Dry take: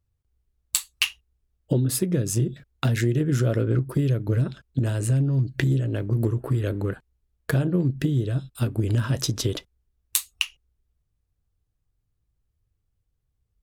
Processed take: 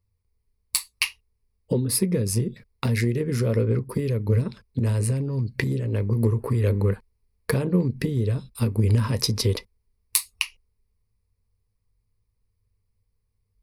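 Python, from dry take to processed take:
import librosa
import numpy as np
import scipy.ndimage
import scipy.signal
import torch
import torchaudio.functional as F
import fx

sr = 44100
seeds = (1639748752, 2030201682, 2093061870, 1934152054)

y = fx.rider(x, sr, range_db=10, speed_s=2.0)
y = fx.ripple_eq(y, sr, per_octave=0.89, db=11)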